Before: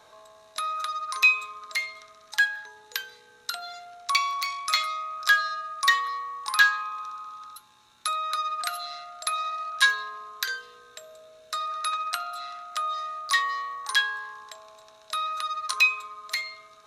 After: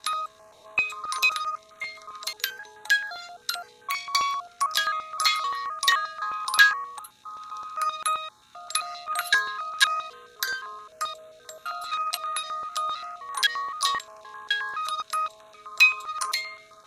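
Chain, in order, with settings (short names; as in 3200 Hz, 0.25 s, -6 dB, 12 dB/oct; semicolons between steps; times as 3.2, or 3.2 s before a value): slices in reverse order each 0.259 s, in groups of 3; stepped notch 7.6 Hz 580–5000 Hz; gain +3.5 dB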